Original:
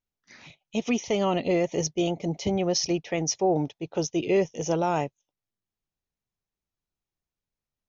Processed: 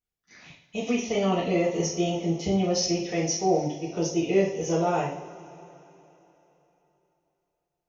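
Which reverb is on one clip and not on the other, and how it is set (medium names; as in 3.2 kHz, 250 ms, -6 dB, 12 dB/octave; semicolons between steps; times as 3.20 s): two-slope reverb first 0.5 s, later 3.5 s, from -20 dB, DRR -7 dB; trim -7.5 dB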